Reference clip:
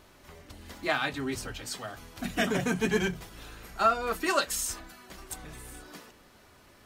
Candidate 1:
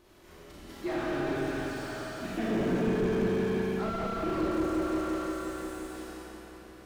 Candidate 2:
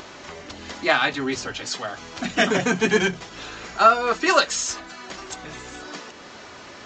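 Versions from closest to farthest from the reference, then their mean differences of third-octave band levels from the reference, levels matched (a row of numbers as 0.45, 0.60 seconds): 2, 1; 6.0, 8.0 decibels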